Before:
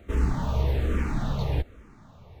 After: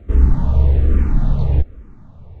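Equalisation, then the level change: tilt -3 dB/oct; 0.0 dB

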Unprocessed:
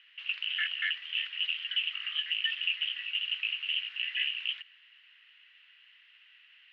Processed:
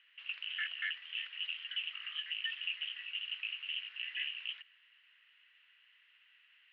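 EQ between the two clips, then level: high shelf 3000 Hz -11 dB; -2.5 dB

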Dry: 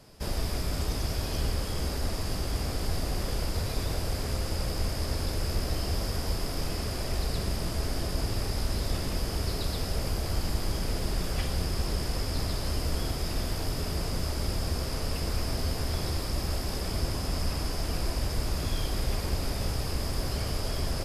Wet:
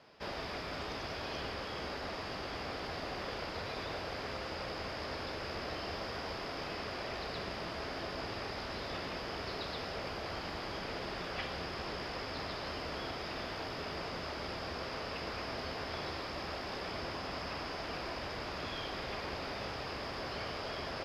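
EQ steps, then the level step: HPF 1000 Hz 6 dB/oct; air absorption 270 m; +4.0 dB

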